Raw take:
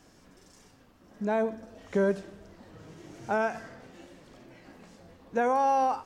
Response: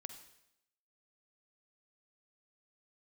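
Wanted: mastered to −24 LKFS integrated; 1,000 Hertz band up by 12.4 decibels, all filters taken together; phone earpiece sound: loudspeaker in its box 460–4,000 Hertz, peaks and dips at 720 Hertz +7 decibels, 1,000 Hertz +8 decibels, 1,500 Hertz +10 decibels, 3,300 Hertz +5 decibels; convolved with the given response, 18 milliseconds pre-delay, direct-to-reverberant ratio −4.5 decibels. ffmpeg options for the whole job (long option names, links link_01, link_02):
-filter_complex "[0:a]equalizer=frequency=1000:width_type=o:gain=8,asplit=2[link_01][link_02];[1:a]atrim=start_sample=2205,adelay=18[link_03];[link_02][link_03]afir=irnorm=-1:irlink=0,volume=9dB[link_04];[link_01][link_04]amix=inputs=2:normalize=0,highpass=460,equalizer=frequency=720:width_type=q:width=4:gain=7,equalizer=frequency=1000:width_type=q:width=4:gain=8,equalizer=frequency=1500:width_type=q:width=4:gain=10,equalizer=frequency=3300:width_type=q:width=4:gain=5,lowpass=frequency=4000:width=0.5412,lowpass=frequency=4000:width=1.3066,volume=-11.5dB"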